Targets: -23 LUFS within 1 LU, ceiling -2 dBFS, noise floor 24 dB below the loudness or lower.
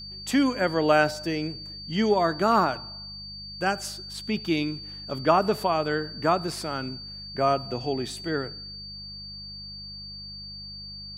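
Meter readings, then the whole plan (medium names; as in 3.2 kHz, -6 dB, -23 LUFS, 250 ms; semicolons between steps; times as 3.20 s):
hum 50 Hz; highest harmonic 200 Hz; hum level -44 dBFS; steady tone 4.6 kHz; tone level -38 dBFS; loudness -26.0 LUFS; peak level -6.0 dBFS; loudness target -23.0 LUFS
-> de-hum 50 Hz, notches 4; band-stop 4.6 kHz, Q 30; trim +3 dB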